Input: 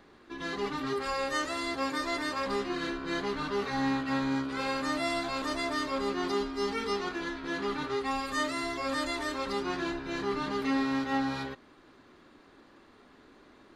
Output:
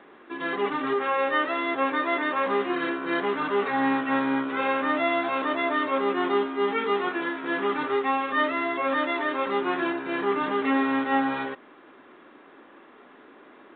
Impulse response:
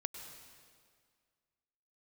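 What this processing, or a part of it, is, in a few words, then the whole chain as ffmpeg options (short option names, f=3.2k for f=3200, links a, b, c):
telephone: -af "highpass=290,lowpass=3k,volume=8dB" -ar 8000 -c:a pcm_mulaw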